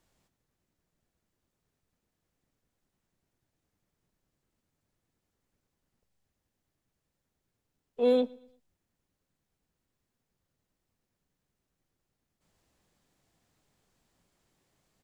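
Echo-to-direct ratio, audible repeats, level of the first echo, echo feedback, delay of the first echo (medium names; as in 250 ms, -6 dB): -23.5 dB, 2, -24.0 dB, 40%, 115 ms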